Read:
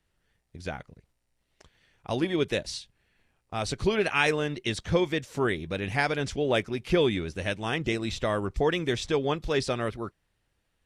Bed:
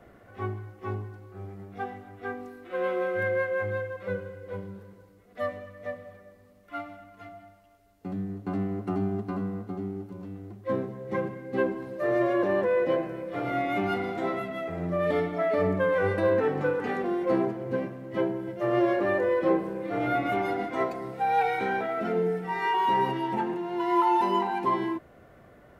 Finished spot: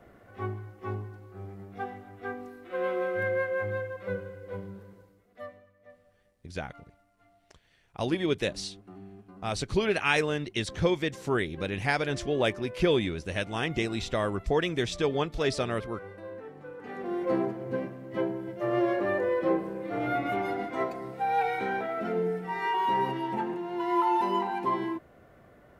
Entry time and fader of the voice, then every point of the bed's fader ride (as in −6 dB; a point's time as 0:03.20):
5.90 s, −1.0 dB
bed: 0:04.99 −1.5 dB
0:05.76 −18.5 dB
0:16.65 −18.5 dB
0:17.17 −2.5 dB